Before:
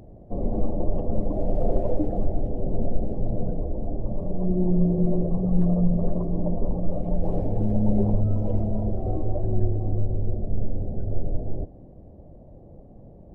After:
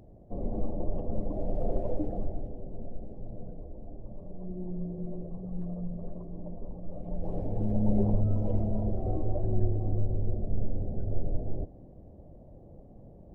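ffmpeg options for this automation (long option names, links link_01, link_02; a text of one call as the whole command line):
ffmpeg -i in.wav -af "volume=4dB,afade=type=out:start_time=2.09:duration=0.59:silence=0.398107,afade=type=in:start_time=6.83:duration=1.11:silence=0.281838" out.wav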